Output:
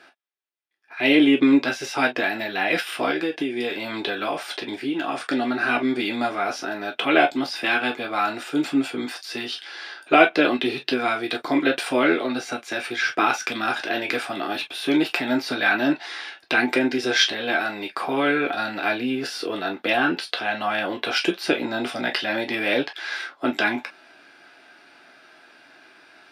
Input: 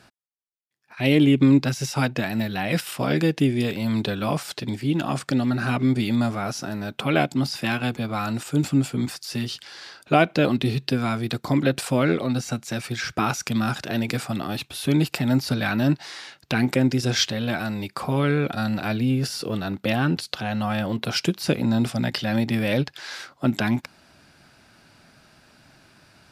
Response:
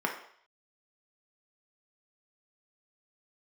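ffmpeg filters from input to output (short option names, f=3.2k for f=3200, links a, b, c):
-filter_complex "[0:a]lowshelf=f=230:g=-8.5[a];[1:a]atrim=start_sample=2205,atrim=end_sample=3969,asetrate=74970,aresample=44100[b];[a][b]afir=irnorm=-1:irlink=0,asettb=1/sr,asplit=3[c][d][e];[c]atrim=end=3.104[f];[d]atrim=start=3.1:end=5.31,asetpts=PTS-STARTPTS,afade=t=in:d=0.004:c=qsin,afade=t=out:st=2.206:d=0.004:c=qsin,acompressor=threshold=-23dB:ratio=6[g];[e]atrim=start=5.306[h];[f][g]acrossfade=d=0.004:c1=hsin:c2=qsin[i];[i][h]acrossfade=d=0.004:c1=qsin:c2=hsin,volume=1dB"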